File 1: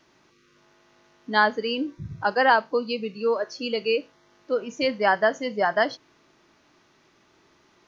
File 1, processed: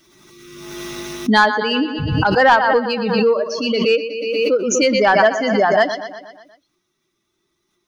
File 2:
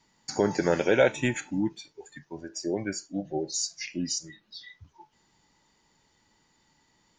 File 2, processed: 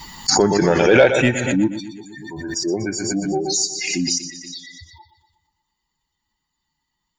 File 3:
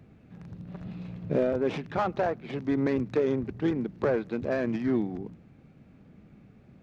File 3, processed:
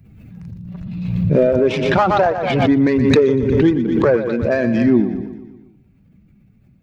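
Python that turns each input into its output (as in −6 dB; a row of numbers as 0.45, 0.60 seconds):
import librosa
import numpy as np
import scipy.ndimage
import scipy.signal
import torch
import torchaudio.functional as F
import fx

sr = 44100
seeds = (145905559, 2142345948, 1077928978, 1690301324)

p1 = fx.bin_expand(x, sr, power=1.5)
p2 = p1 + fx.echo_feedback(p1, sr, ms=120, feedback_pct=56, wet_db=-12, dry=0)
p3 = 10.0 ** (-13.0 / 20.0) * np.tanh(p2 / 10.0 ** (-13.0 / 20.0))
p4 = fx.pre_swell(p3, sr, db_per_s=33.0)
y = p4 * 10.0 ** (-2 / 20.0) / np.max(np.abs(p4))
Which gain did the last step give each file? +9.5, +10.5, +14.0 decibels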